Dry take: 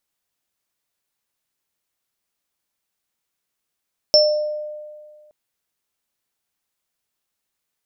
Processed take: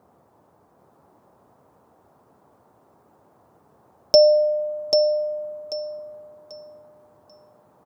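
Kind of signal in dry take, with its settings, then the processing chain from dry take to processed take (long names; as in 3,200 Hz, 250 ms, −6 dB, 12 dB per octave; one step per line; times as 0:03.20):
inharmonic partials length 1.17 s, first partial 603 Hz, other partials 5,370 Hz, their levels 3 dB, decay 1.85 s, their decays 0.45 s, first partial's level −11 dB
comb filter 6.8 ms
noise in a band 75–1,000 Hz −59 dBFS
on a send: feedback echo with a high-pass in the loop 789 ms, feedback 27%, high-pass 220 Hz, level −4.5 dB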